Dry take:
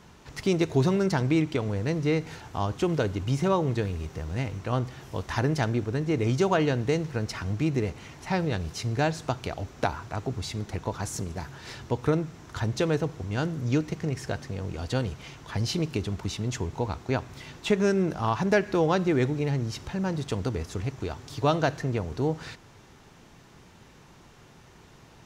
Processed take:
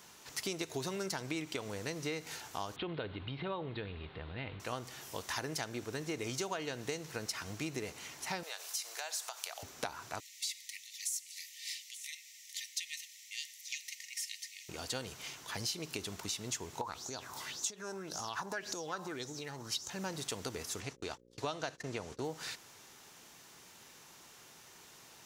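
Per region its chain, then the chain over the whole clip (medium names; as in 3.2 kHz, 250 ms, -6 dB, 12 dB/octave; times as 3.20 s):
2.76–4.60 s: steep low-pass 4 kHz 72 dB/octave + bass shelf 91 Hz +11.5 dB + compression 2.5:1, threshold -25 dBFS
8.43–9.63 s: high-pass 610 Hz 24 dB/octave + treble shelf 5.9 kHz +7 dB + compression 4:1, threshold -35 dBFS
10.20–14.69 s: brick-wall FIR high-pass 1.8 kHz + delay 877 ms -19.5 dB
16.81–19.90 s: peaking EQ 2.3 kHz -8.5 dB 0.95 oct + compression, threshold -31 dBFS + sweeping bell 1.8 Hz 880–6800 Hz +17 dB
20.80–22.23 s: gate -38 dBFS, range -49 dB + low-pass 8.7 kHz + mains buzz 60 Hz, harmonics 9, -53 dBFS -3 dB/octave
whole clip: RIAA curve recording; compression 6:1, threshold -30 dBFS; trim -4.5 dB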